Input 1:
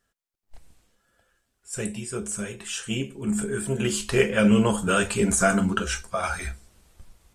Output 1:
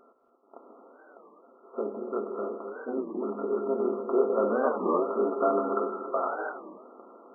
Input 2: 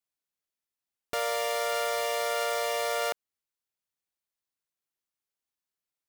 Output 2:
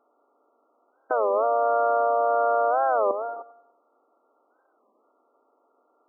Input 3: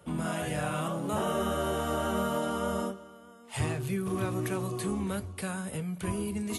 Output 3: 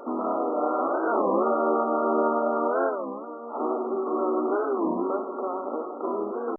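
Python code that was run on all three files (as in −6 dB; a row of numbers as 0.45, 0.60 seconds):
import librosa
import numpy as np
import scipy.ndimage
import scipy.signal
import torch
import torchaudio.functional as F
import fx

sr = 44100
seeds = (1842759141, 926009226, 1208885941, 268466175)

y = fx.bin_compress(x, sr, power=0.6)
y = fx.brickwall_bandpass(y, sr, low_hz=230.0, high_hz=1400.0)
y = fx.echo_feedback(y, sr, ms=96, feedback_pct=52, wet_db=-18.0)
y = fx.rev_gated(y, sr, seeds[0], gate_ms=310, shape='rising', drr_db=6.5)
y = fx.record_warp(y, sr, rpm=33.33, depth_cents=250.0)
y = y * 10.0 ** (-12 / 20.0) / np.max(np.abs(y))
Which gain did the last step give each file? −4.5, +8.0, +5.5 decibels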